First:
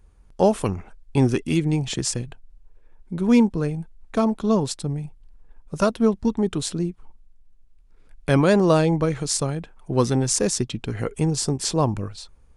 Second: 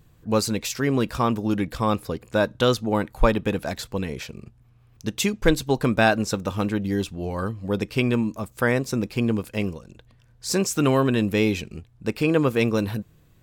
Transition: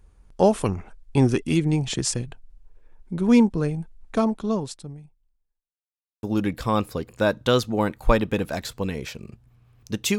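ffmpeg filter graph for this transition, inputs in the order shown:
ffmpeg -i cue0.wav -i cue1.wav -filter_complex "[0:a]apad=whole_dur=10.18,atrim=end=10.18,asplit=2[link_01][link_02];[link_01]atrim=end=5.74,asetpts=PTS-STARTPTS,afade=type=out:start_time=4.13:duration=1.61:curve=qua[link_03];[link_02]atrim=start=5.74:end=6.23,asetpts=PTS-STARTPTS,volume=0[link_04];[1:a]atrim=start=1.37:end=5.32,asetpts=PTS-STARTPTS,afade=type=in:duration=0.004:curve=hsin[link_05];[link_03][link_04][link_05]concat=n=3:v=0:a=1" out.wav

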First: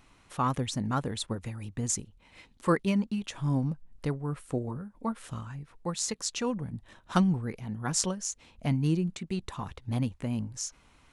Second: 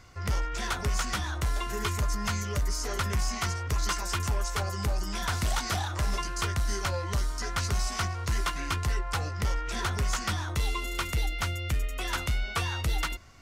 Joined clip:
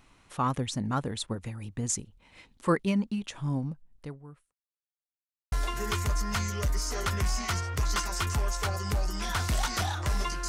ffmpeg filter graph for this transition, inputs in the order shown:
ffmpeg -i cue0.wav -i cue1.wav -filter_complex "[0:a]apad=whole_dur=10.48,atrim=end=10.48,asplit=2[link_01][link_02];[link_01]atrim=end=4.53,asetpts=PTS-STARTPTS,afade=type=out:start_time=3.2:duration=1.33[link_03];[link_02]atrim=start=4.53:end=5.52,asetpts=PTS-STARTPTS,volume=0[link_04];[1:a]atrim=start=1.45:end=6.41,asetpts=PTS-STARTPTS,afade=type=in:duration=0.004:curve=hsin[link_05];[link_03][link_04][link_05]concat=n=3:v=0:a=1" out.wav

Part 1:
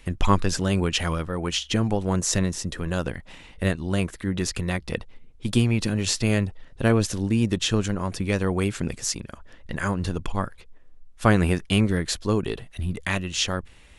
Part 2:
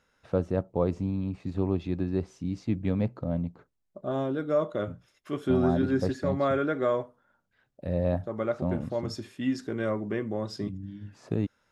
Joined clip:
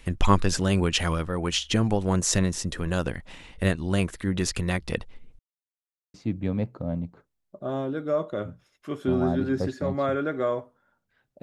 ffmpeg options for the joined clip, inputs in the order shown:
ffmpeg -i cue0.wav -i cue1.wav -filter_complex "[0:a]apad=whole_dur=11.42,atrim=end=11.42,asplit=2[link_01][link_02];[link_01]atrim=end=5.39,asetpts=PTS-STARTPTS,afade=type=out:start_time=5.386:duration=0.004:curve=hsin[link_03];[link_02]atrim=start=5.39:end=6.14,asetpts=PTS-STARTPTS,volume=0[link_04];[1:a]atrim=start=2.56:end=7.84,asetpts=PTS-STARTPTS,afade=type=in:duration=0.004:curve=hsin[link_05];[link_03][link_04][link_05]concat=n=3:v=0:a=1" out.wav

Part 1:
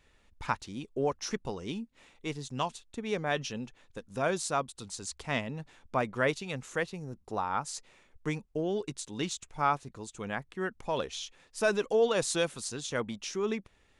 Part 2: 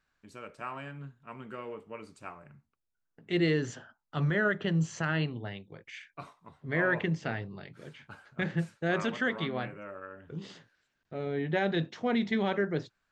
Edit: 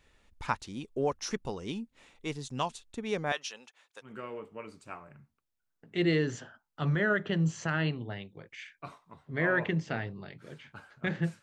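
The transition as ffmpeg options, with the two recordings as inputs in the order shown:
ffmpeg -i cue0.wav -i cue1.wav -filter_complex "[0:a]asettb=1/sr,asplit=3[link_01][link_02][link_03];[link_01]atrim=end=3.324[link_04];[link_02]atrim=start=3.32:end=4.13,asetpts=PTS-STARTPTS,afade=type=in:duration=0.004:curve=qsin,afade=type=out:start_time=0.806:duration=0.004:curve=qsin,highpass=800[link_05];[link_03]atrim=start=4.126[link_06];[link_04][link_05]acrossfade=duration=0.004:curve1=hsin:curve2=qsin[link_07];[link_07][link_06]acrossfade=duration=0.004:curve1=qsin:curve2=hsin,apad=whole_dur=11.42,atrim=end=11.42,atrim=end=4.13,asetpts=PTS-STARTPTS[link_08];[1:a]atrim=start=1.36:end=8.77,asetpts=PTS-STARTPTS[link_09];[link_08][link_09]acrossfade=duration=0.12:curve1=tri:curve2=tri" out.wav

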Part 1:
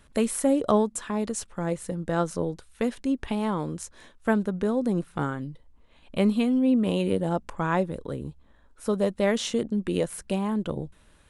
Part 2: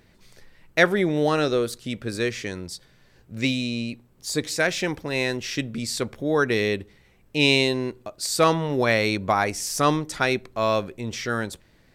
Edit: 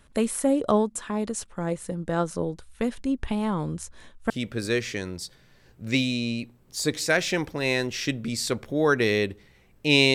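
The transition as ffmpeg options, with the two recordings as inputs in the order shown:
ffmpeg -i cue0.wav -i cue1.wav -filter_complex "[0:a]asplit=3[link_01][link_02][link_03];[link_01]afade=type=out:start_time=2.58:duration=0.02[link_04];[link_02]asubboost=boost=2:cutoff=200,afade=type=in:start_time=2.58:duration=0.02,afade=type=out:start_time=4.3:duration=0.02[link_05];[link_03]afade=type=in:start_time=4.3:duration=0.02[link_06];[link_04][link_05][link_06]amix=inputs=3:normalize=0,apad=whole_dur=10.14,atrim=end=10.14,atrim=end=4.302[link_07];[1:a]atrim=start=1.798:end=7.64[link_08];[link_07][link_08]acrossfade=duration=0.004:curve1=hsin:curve2=hsin" out.wav

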